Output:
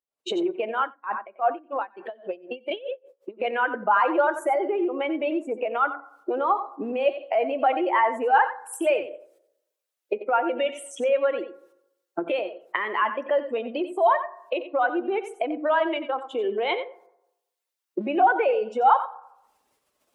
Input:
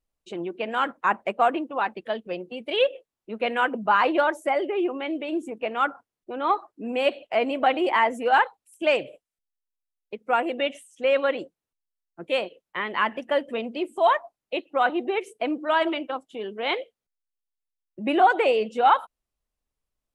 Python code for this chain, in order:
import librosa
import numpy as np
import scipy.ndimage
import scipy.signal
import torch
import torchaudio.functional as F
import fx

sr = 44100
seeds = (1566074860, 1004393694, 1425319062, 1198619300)

y = fx.spec_expand(x, sr, power=1.5)
y = fx.recorder_agc(y, sr, target_db=-18.0, rise_db_per_s=57.0, max_gain_db=30)
y = scipy.signal.sosfilt(scipy.signal.butter(2, 370.0, 'highpass', fs=sr, output='sos'), y)
y = y + 10.0 ** (-11.5 / 20.0) * np.pad(y, (int(90 * sr / 1000.0), 0))[:len(y)]
y = fx.rev_fdn(y, sr, rt60_s=0.88, lf_ratio=0.85, hf_ratio=0.4, size_ms=51.0, drr_db=13.5)
y = fx.tremolo_db(y, sr, hz=fx.line((0.71, 2.5), (3.43, 6.4)), depth_db=23, at=(0.71, 3.43), fade=0.02)